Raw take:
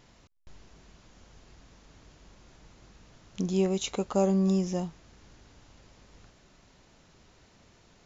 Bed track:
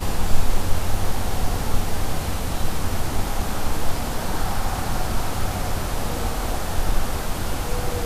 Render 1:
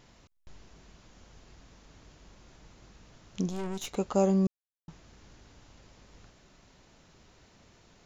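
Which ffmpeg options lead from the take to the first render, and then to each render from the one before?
-filter_complex "[0:a]asettb=1/sr,asplit=3[s0][s1][s2];[s0]atrim=end=3.494[s3];[s1]atrim=start=3.49:end=3.96,asetpts=PTS-STARTPTS,afade=t=in:d=0.004:c=qsin,afade=t=out:st=0.466:d=0.004:c=qsin,aeval=exprs='(tanh(44.7*val(0)+0.7)-tanh(0.7))/44.7':c=same[s4];[s2]atrim=start=3.956[s5];[s3][s4]acrossfade=d=0.004:c1=hsin:c2=qsin[s6];[s6][s5]acrossfade=d=0.004:c1=qsin:c2=hsin,asplit=3[s7][s8][s9];[s7]atrim=end=4.47,asetpts=PTS-STARTPTS,afade=t=out:st=4.466:d=0.004:c=hsin[s10];[s8]atrim=start=4.47:end=4.88,asetpts=PTS-STARTPTS,volume=0[s11];[s9]atrim=start=4.88,asetpts=PTS-STARTPTS,afade=t=in:d=0.004:c=hsin[s12];[s10][s11][s12]concat=n=3:v=0:a=1"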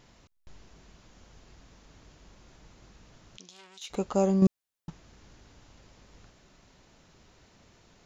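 -filter_complex "[0:a]asettb=1/sr,asplit=3[s0][s1][s2];[s0]atrim=end=3.374[s3];[s1]atrim=start=3.37:end=3.9,asetpts=PTS-STARTPTS,afade=t=in:d=0.004:c=qsin,afade=t=out:st=0.526:d=0.004:c=qsin,bandpass=f=3800:t=q:w=1.2[s4];[s2]atrim=start=3.896[s5];[s3][s4]acrossfade=d=0.004:c1=hsin:c2=qsin[s6];[s6][s5]acrossfade=d=0.004:c1=qsin:c2=hsin,asplit=3[s7][s8][s9];[s7]atrim=end=4.422[s10];[s8]atrim=start=4.418:end=4.902,asetpts=PTS-STARTPTS,volume=2.24[s11];[s9]atrim=start=4.898[s12];[s10][s11]acrossfade=d=0.004:c1=hsin:c2=hsin[s13];[s13][s12]acrossfade=d=0.004:c1=hsin:c2=hsin"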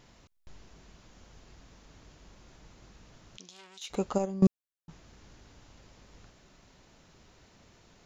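-filter_complex "[0:a]asplit=3[s0][s1][s2];[s0]afade=t=out:st=4.17:d=0.02[s3];[s1]agate=range=0.251:threshold=0.0794:ratio=16:release=100:detection=peak,afade=t=in:st=4.17:d=0.02,afade=t=out:st=4.89:d=0.02[s4];[s2]afade=t=in:st=4.89:d=0.02[s5];[s3][s4][s5]amix=inputs=3:normalize=0"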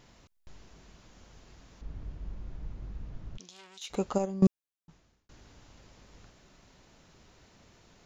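-filter_complex "[0:a]asettb=1/sr,asplit=3[s0][s1][s2];[s0]atrim=end=1.814[s3];[s1]atrim=start=1.81:end=3.4,asetpts=PTS-STARTPTS,afade=t=in:d=0.004:c=qsin,afade=t=out:st=1.586:d=0.004:c=qsin,aemphasis=mode=reproduction:type=riaa[s4];[s2]atrim=start=3.396[s5];[s3][s4]acrossfade=d=0.004:c1=hsin:c2=qsin[s6];[s6][s5]acrossfade=d=0.004:c1=qsin:c2=hsin,asplit=2[s7][s8];[s7]atrim=end=5.29,asetpts=PTS-STARTPTS,afade=t=out:st=4.43:d=0.86[s9];[s8]atrim=start=5.29,asetpts=PTS-STARTPTS,afade=t=in:d=0.004:c=hsin[s10];[s9][s10]concat=n=2:v=0:a=1"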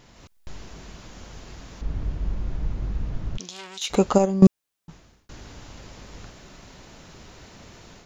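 -filter_complex "[0:a]dynaudnorm=f=140:g=3:m=2.37,asplit=2[s0][s1];[s1]alimiter=limit=0.178:level=0:latency=1:release=385,volume=0.891[s2];[s0][s2]amix=inputs=2:normalize=0"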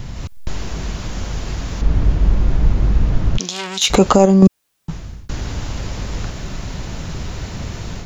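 -filter_complex "[0:a]acrossover=split=160|1100|3600[s0][s1][s2][s3];[s0]acompressor=mode=upward:threshold=0.0355:ratio=2.5[s4];[s4][s1][s2][s3]amix=inputs=4:normalize=0,alimiter=level_in=4.73:limit=0.891:release=50:level=0:latency=1"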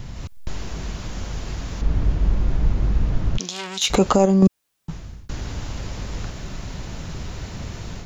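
-af "volume=0.562"

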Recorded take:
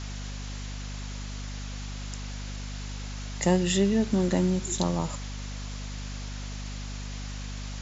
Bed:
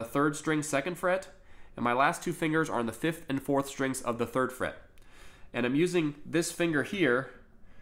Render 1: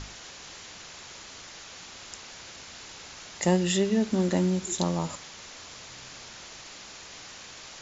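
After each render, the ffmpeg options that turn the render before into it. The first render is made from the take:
-af "bandreject=f=50:t=h:w=6,bandreject=f=100:t=h:w=6,bandreject=f=150:t=h:w=6,bandreject=f=200:t=h:w=6,bandreject=f=250:t=h:w=6"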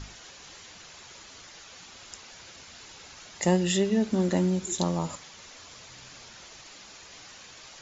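-af "afftdn=nr=6:nf=-46"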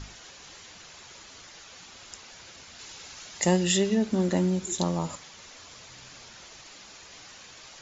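-filter_complex "[0:a]asettb=1/sr,asplit=3[s0][s1][s2];[s0]atrim=end=2.794[s3];[s1]atrim=start=2.79:end=3.95,asetpts=PTS-STARTPTS,afade=t=in:d=0.004:c=qsin,afade=t=out:st=1.156:d=0.004:c=qsin,highshelf=f=2600:g=5[s4];[s2]atrim=start=3.946[s5];[s3][s4]acrossfade=d=0.004:c1=hsin:c2=qsin[s6];[s6][s5]acrossfade=d=0.004:c1=qsin:c2=hsin"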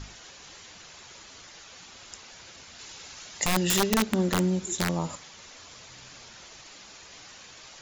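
-filter_complex "[0:a]asettb=1/sr,asplit=3[s0][s1][s2];[s0]atrim=end=3.444[s3];[s1]atrim=start=3.44:end=4.98,asetpts=PTS-STARTPTS,afade=t=in:d=0.004:c=qsin,afade=t=out:st=1.536:d=0.004:c=qsin,aeval=exprs='(mod(6.31*val(0)+1,2)-1)/6.31':c=same[s4];[s2]atrim=start=4.976[s5];[s3][s4]acrossfade=d=0.004:c1=hsin:c2=qsin[s6];[s6][s5]acrossfade=d=0.004:c1=qsin:c2=hsin"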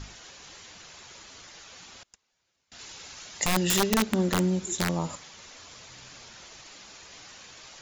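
-filter_complex "[0:a]asettb=1/sr,asplit=3[s0][s1][s2];[s0]atrim=end=2.034[s3];[s1]atrim=start=2.03:end=2.72,asetpts=PTS-STARTPTS,afade=t=in:d=0.004:c=qsin,afade=t=out:st=0.686:d=0.004:c=qsin,agate=range=0.0355:threshold=0.00891:ratio=16:release=100:detection=peak[s4];[s2]atrim=start=2.716[s5];[s3][s4]acrossfade=d=0.004:c1=hsin:c2=qsin[s6];[s6][s5]acrossfade=d=0.004:c1=qsin:c2=hsin"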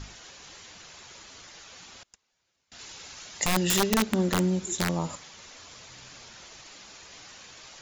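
-af anull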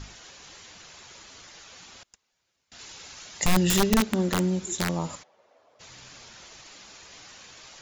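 -filter_complex "[0:a]asettb=1/sr,asplit=3[s0][s1][s2];[s0]atrim=end=3.424[s3];[s1]atrim=start=3.42:end=4.01,asetpts=PTS-STARTPTS,afade=t=in:d=0.004:c=qsin,afade=t=out:st=0.586:d=0.004:c=qsin,lowshelf=f=180:g=10[s4];[s2]atrim=start=4.006[s5];[s3][s4]acrossfade=d=0.004:c1=hsin:c2=qsin[s6];[s6][s5]acrossfade=d=0.004:c1=qsin:c2=hsin,asplit=3[s7][s8][s9];[s7]afade=t=out:st=5.22:d=0.02[s10];[s8]bandpass=f=600:t=q:w=2.9,afade=t=in:st=5.22:d=0.02,afade=t=out:st=5.79:d=0.02[s11];[s9]afade=t=in:st=5.79:d=0.02[s12];[s10][s11][s12]amix=inputs=3:normalize=0"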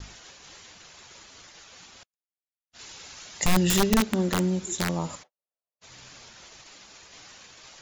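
-af "agate=range=0.00794:threshold=0.00398:ratio=16:detection=peak"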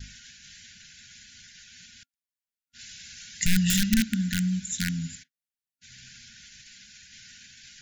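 -af "afftfilt=real='re*(1-between(b*sr/4096,260,1400))':imag='im*(1-between(b*sr/4096,260,1400))':win_size=4096:overlap=0.75"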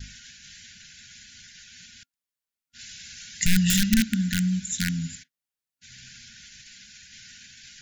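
-af "volume=1.26"

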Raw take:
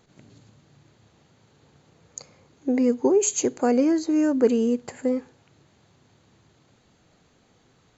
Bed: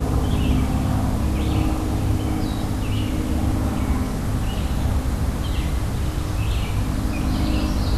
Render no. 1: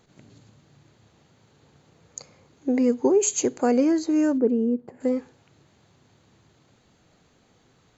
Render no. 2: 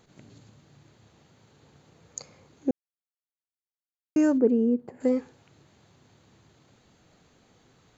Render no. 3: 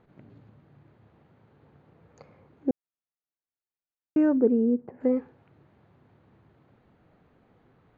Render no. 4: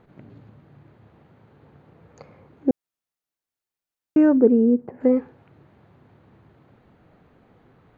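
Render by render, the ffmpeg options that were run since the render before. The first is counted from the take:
-filter_complex "[0:a]asplit=3[s0][s1][s2];[s0]afade=t=out:st=4.37:d=0.02[s3];[s1]bandpass=f=270:t=q:w=0.89,afade=t=in:st=4.37:d=0.02,afade=t=out:st=5:d=0.02[s4];[s2]afade=t=in:st=5:d=0.02[s5];[s3][s4][s5]amix=inputs=3:normalize=0"
-filter_complex "[0:a]asplit=3[s0][s1][s2];[s0]atrim=end=2.71,asetpts=PTS-STARTPTS,afade=t=out:st=2.706:d=0.004:c=hsin[s3];[s1]atrim=start=2.71:end=4.16,asetpts=PTS-STARTPTS,volume=0[s4];[s2]atrim=start=4.16,asetpts=PTS-STARTPTS,afade=t=in:d=0.004:c=hsin[s5];[s3][s4][s5]concat=n=3:v=0:a=1"
-af "lowpass=2300,aemphasis=mode=reproduction:type=75kf"
-af "volume=2"

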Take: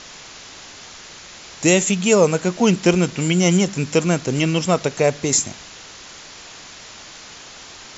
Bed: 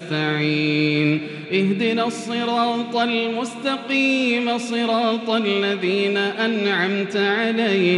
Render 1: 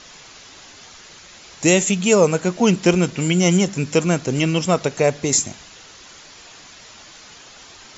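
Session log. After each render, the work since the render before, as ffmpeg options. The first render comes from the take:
-af "afftdn=nr=6:nf=-40"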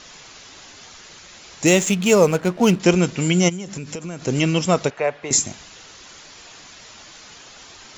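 -filter_complex "[0:a]asettb=1/sr,asplit=3[s0][s1][s2];[s0]atrim=end=1.664[s3];[s1]atrim=start=1.66:end=2.8,asetpts=PTS-STARTPTS,afade=t=in:d=0.004:c=qsin,afade=t=out:st=1.136:d=0.004:c=qsin,adynamicsmooth=sensitivity=6.5:basefreq=1500[s4];[s2]atrim=start=2.796[s5];[s3][s4]acrossfade=d=0.004:c1=hsin:c2=qsin[s6];[s6][s5]acrossfade=d=0.004:c1=qsin:c2=hsin,asplit=3[s7][s8][s9];[s7]afade=t=out:st=3.48:d=0.02[s10];[s8]acompressor=threshold=0.0501:ratio=16:attack=3.2:release=140:knee=1:detection=peak,afade=t=in:st=3.48:d=0.02,afade=t=out:st=4.22:d=0.02[s11];[s9]afade=t=in:st=4.22:d=0.02[s12];[s10][s11][s12]amix=inputs=3:normalize=0,asettb=1/sr,asplit=3[s13][s14][s15];[s13]atrim=end=4.904[s16];[s14]atrim=start=4.9:end=5.31,asetpts=PTS-STARTPTS,afade=t=in:d=0.004:c=qsin,afade=t=out:st=0.406:d=0.004:c=qsin,acrossover=split=530 3000:gain=0.178 1 0.0631[s17][s18][s19];[s17][s18][s19]amix=inputs=3:normalize=0[s20];[s15]atrim=start=5.306[s21];[s16][s20]acrossfade=d=0.004:c1=hsin:c2=qsin[s22];[s22][s21]acrossfade=d=0.004:c1=qsin:c2=hsin"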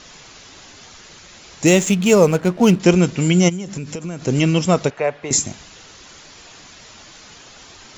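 -af "lowshelf=f=380:g=4.5"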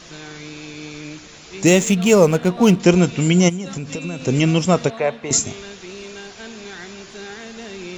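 -filter_complex "[1:a]volume=0.158[s0];[0:a][s0]amix=inputs=2:normalize=0"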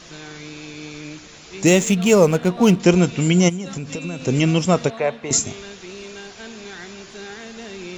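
-af "volume=0.891"

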